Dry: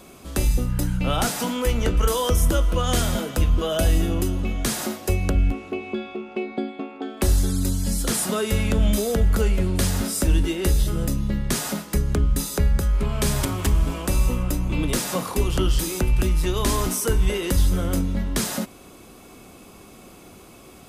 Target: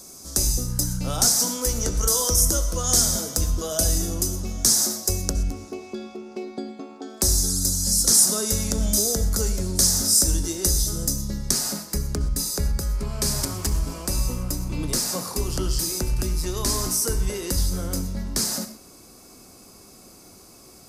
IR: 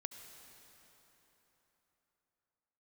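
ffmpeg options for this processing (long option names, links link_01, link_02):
-filter_complex "[0:a]asetnsamples=nb_out_samples=441:pad=0,asendcmd='11.51 highshelf g 6.5',highshelf=frequency=4000:width_type=q:width=3:gain=12[link_01];[1:a]atrim=start_sample=2205,atrim=end_sample=6615,asetrate=48510,aresample=44100[link_02];[link_01][link_02]afir=irnorm=-1:irlink=0"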